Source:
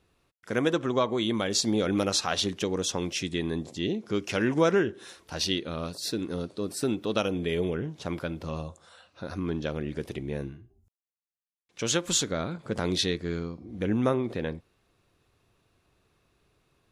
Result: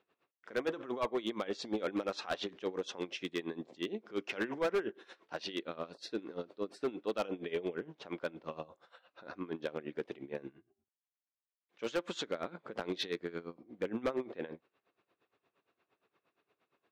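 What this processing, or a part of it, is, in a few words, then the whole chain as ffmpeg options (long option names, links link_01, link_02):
helicopter radio: -af "highpass=330,lowpass=2800,aeval=exprs='val(0)*pow(10,-18*(0.5-0.5*cos(2*PI*8.6*n/s))/20)':channel_layout=same,asoftclip=type=hard:threshold=-27dB"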